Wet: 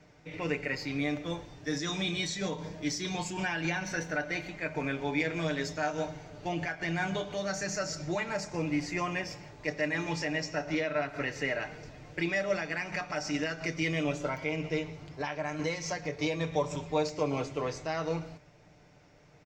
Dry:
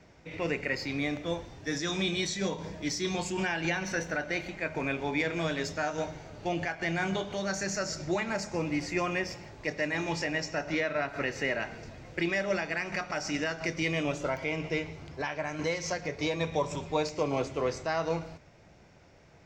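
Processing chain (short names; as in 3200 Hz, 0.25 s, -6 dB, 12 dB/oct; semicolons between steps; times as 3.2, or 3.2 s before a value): comb 6.7 ms, depth 50%; gain -2.5 dB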